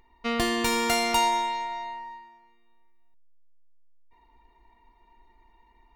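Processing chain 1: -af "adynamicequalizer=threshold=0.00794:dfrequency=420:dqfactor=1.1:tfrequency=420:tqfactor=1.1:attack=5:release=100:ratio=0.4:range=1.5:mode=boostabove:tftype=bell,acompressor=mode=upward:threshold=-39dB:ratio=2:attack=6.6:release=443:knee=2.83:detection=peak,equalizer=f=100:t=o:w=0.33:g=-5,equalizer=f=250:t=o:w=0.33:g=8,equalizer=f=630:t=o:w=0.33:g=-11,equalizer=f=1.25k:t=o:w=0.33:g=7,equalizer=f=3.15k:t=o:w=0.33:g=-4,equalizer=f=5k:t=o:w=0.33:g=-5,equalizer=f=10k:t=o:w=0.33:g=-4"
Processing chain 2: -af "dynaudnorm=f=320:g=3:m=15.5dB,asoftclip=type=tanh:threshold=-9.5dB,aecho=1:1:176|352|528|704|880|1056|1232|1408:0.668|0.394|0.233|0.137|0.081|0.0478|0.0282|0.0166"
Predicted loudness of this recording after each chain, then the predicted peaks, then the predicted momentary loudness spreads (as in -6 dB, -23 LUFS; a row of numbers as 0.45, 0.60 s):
-24.5, -14.5 LUFS; -10.5, -4.0 dBFS; 15, 17 LU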